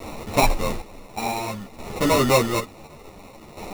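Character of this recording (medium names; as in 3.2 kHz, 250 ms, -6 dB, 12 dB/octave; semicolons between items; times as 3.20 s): a quantiser's noise floor 6-bit, dither triangular; chopped level 0.56 Hz, depth 65%, duty 45%; aliases and images of a low sample rate 1.6 kHz, jitter 0%; a shimmering, thickened sound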